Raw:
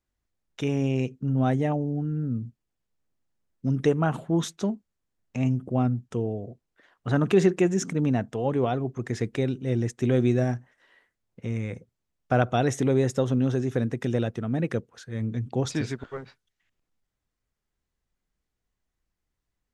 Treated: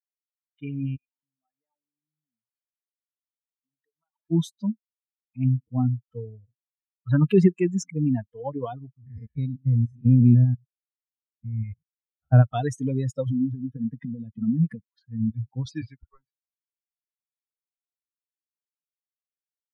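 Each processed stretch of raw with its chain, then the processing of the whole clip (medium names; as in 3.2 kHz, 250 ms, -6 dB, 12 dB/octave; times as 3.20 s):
0.96–4.31 s: one-bit delta coder 64 kbps, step -37.5 dBFS + high-pass 630 Hz 6 dB/octave + compression 5:1, threshold -44 dBFS
8.97–12.43 s: spectrogram pixelated in time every 100 ms + dynamic bell 180 Hz, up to +6 dB, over -39 dBFS, Q 1.5
13.26–15.30 s: compression 12:1, threshold -27 dBFS + peaking EQ 210 Hz +9.5 dB 1.6 oct + tape noise reduction on one side only encoder only
whole clip: expander on every frequency bin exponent 3; peaking EQ 140 Hz +12 dB 1.9 oct; level-controlled noise filter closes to 1.4 kHz, open at -21 dBFS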